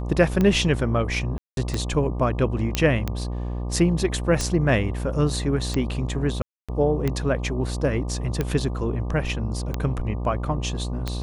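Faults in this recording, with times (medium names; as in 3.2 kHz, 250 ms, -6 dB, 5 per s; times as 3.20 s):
buzz 60 Hz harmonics 20 -28 dBFS
tick 45 rpm -11 dBFS
1.38–1.57 s: dropout 192 ms
2.75 s: pop -6 dBFS
6.42–6.69 s: dropout 266 ms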